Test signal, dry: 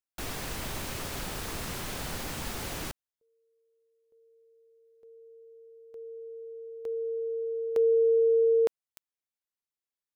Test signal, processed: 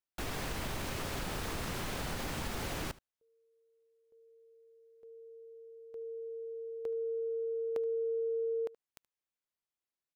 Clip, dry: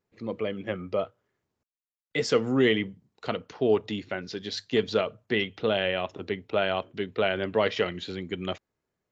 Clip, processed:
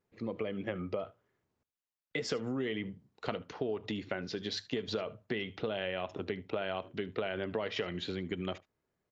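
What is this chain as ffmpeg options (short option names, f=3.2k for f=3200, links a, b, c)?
-filter_complex "[0:a]highshelf=f=4.7k:g=-6.5,acompressor=threshold=-35dB:ratio=5:attack=19:release=139:knee=1:detection=peak,asplit=2[a][b];[b]aecho=0:1:75:0.0891[c];[a][c]amix=inputs=2:normalize=0"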